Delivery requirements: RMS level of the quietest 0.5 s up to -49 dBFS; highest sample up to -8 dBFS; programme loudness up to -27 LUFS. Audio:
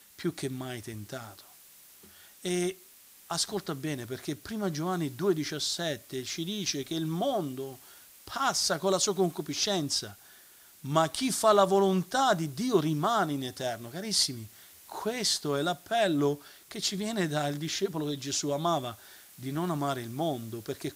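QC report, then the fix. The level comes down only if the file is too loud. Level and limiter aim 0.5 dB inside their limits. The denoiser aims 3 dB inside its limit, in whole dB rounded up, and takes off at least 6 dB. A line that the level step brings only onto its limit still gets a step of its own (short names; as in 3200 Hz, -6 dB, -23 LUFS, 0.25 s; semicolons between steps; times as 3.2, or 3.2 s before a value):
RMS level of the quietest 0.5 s -55 dBFS: OK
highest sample -10.0 dBFS: OK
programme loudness -30.0 LUFS: OK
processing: none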